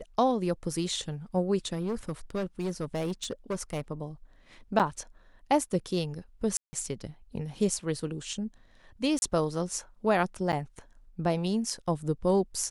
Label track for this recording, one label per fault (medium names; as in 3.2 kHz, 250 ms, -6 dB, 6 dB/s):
1.720000	3.810000	clipped -27 dBFS
4.790000	4.800000	dropout 7.9 ms
6.570000	6.730000	dropout 160 ms
9.190000	9.220000	dropout 31 ms
10.520000	10.530000	dropout 8.5 ms